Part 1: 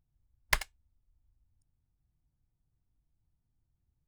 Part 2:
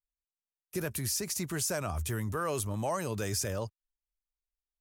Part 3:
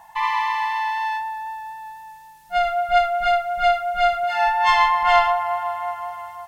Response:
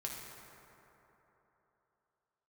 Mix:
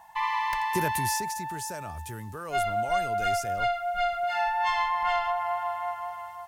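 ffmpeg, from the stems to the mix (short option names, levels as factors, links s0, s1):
-filter_complex "[0:a]volume=0.237[s0];[1:a]acontrast=85,volume=0.794,afade=t=out:st=0.76:d=0.61:silence=0.298538[s1];[2:a]acompressor=threshold=0.126:ratio=6,volume=0.562[s2];[s0][s1][s2]amix=inputs=3:normalize=0"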